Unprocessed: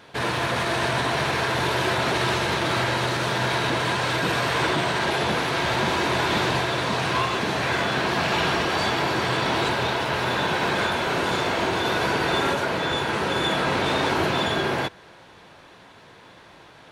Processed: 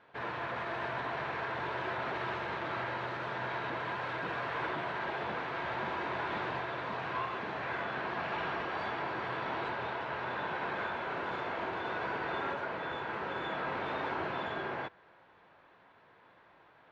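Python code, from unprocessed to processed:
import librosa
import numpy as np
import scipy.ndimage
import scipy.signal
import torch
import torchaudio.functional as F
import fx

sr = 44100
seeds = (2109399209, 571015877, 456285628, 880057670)

y = scipy.signal.sosfilt(scipy.signal.butter(2, 1800.0, 'lowpass', fs=sr, output='sos'), x)
y = fx.low_shelf(y, sr, hz=470.0, db=-10.0)
y = y * librosa.db_to_amplitude(-8.5)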